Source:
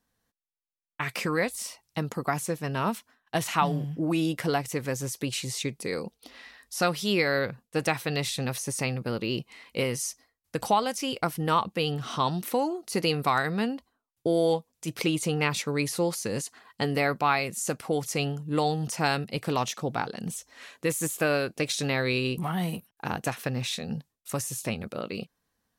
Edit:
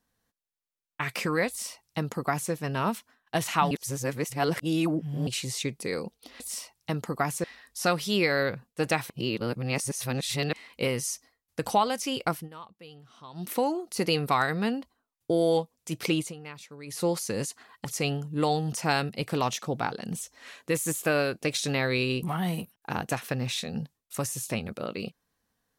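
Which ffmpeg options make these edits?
-filter_complex "[0:a]asplit=12[a][b][c][d][e][f][g][h][i][j][k][l];[a]atrim=end=3.712[m];[b]atrim=start=3.708:end=5.272,asetpts=PTS-STARTPTS,areverse[n];[c]atrim=start=5.268:end=6.402[o];[d]atrim=start=1.478:end=2.522[p];[e]atrim=start=6.398:end=8.062[q];[f]atrim=start=8.058:end=9.492,asetpts=PTS-STARTPTS,areverse[r];[g]atrim=start=9.488:end=11.45,asetpts=PTS-STARTPTS,afade=t=out:st=1.802:d=0.16:silence=0.0944061[s];[h]atrim=start=11.45:end=12.29,asetpts=PTS-STARTPTS,volume=-20.5dB[t];[i]atrim=start=12.29:end=15.3,asetpts=PTS-STARTPTS,afade=t=in:d=0.16:silence=0.0944061,afade=t=out:st=2.84:d=0.17:silence=0.149624[u];[j]atrim=start=15.3:end=15.82,asetpts=PTS-STARTPTS,volume=-16.5dB[v];[k]atrim=start=15.82:end=16.812,asetpts=PTS-STARTPTS,afade=t=in:d=0.17:silence=0.149624[w];[l]atrim=start=17.998[x];[m][n]acrossfade=d=0.004:c1=hsin:c2=hsin[y];[y][o]acrossfade=d=0.004:c1=hsin:c2=hsin[z];[z][p]acrossfade=d=0.004:c1=hsin:c2=hsin[aa];[aa][q]acrossfade=d=0.004:c1=hsin:c2=hsin[ab];[ab][r]acrossfade=d=0.004:c1=hsin:c2=hsin[ac];[s][t][u][v][w]concat=n=5:v=0:a=1[ad];[ac][ad]acrossfade=d=0.004:c1=hsin:c2=hsin[ae];[ae][x]acrossfade=d=0.004:c1=hsin:c2=hsin"

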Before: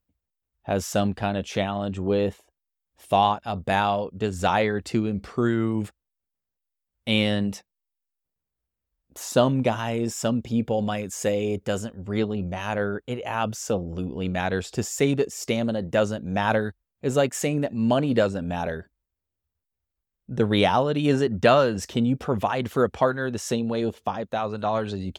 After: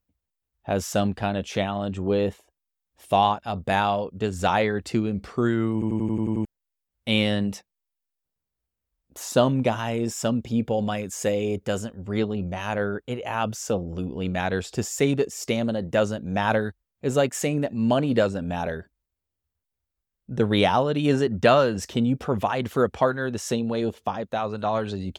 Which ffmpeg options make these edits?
-filter_complex "[0:a]asplit=9[a][b][c][d][e][f][g][h][i];[a]atrim=end=5.822[j];[b]atrim=start=5.728:end=5.822[k];[c]atrim=start=5.728:end=5.822[l];[d]atrim=start=5.728:end=5.822[m];[e]atrim=start=5.728:end=5.822[n];[f]atrim=start=5.728:end=5.822[o];[g]atrim=start=5.728:end=5.822[p];[h]atrim=start=5.728:end=5.822[q];[i]atrim=start=6.448[r];[j][k]acrossfade=d=0.004:c1=hsin:c2=hsin[s];[s][l]acrossfade=d=0.004:c1=hsin:c2=hsin[t];[t][m]acrossfade=d=0.004:c1=hsin:c2=hsin[u];[u][n]acrossfade=d=0.004:c1=hsin:c2=hsin[v];[v][o]acrossfade=d=0.004:c1=hsin:c2=hsin[w];[w][p]acrossfade=d=0.004:c1=hsin:c2=hsin[x];[x][q]acrossfade=d=0.004:c1=hsin:c2=hsin[y];[y][r]acrossfade=d=0.004:c1=hsin:c2=hsin"

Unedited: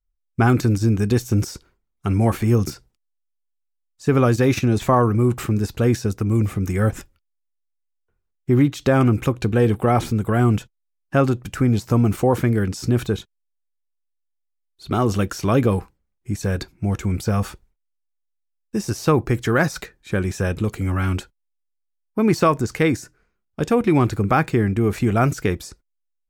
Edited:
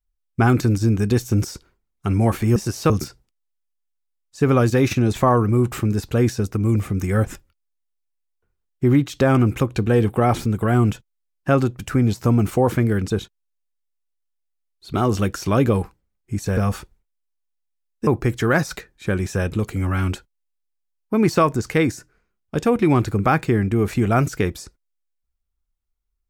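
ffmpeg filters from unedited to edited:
-filter_complex "[0:a]asplit=6[a][b][c][d][e][f];[a]atrim=end=2.562[g];[b]atrim=start=18.778:end=19.122[h];[c]atrim=start=2.558:end=12.762[i];[d]atrim=start=13.068:end=16.542[j];[e]atrim=start=17.278:end=18.782[k];[f]atrim=start=19.118[l];[g][h]acrossfade=d=0.004:c1=hsin:c2=hsin[m];[m][i]acrossfade=d=0.004:c1=hsin:c2=hsin[n];[n][j]acrossfade=d=0.004:c1=hsin:c2=hsin[o];[o][k]acrossfade=d=0.004:c1=hsin:c2=hsin[p];[p][l]acrossfade=d=0.004:c1=hsin:c2=hsin"

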